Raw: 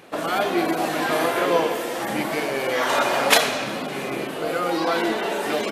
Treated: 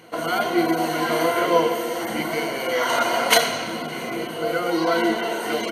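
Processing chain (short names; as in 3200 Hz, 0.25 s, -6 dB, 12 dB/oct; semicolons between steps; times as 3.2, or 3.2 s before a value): ripple EQ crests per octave 1.9, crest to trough 12 dB; gain -2 dB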